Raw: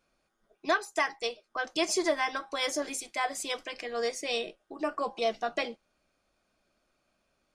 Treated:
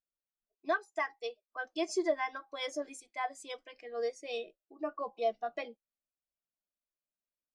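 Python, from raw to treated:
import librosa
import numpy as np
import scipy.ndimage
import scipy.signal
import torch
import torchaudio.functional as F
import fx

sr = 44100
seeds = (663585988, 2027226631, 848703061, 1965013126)

y = fx.spectral_expand(x, sr, expansion=1.5)
y = F.gain(torch.from_numpy(y), -3.5).numpy()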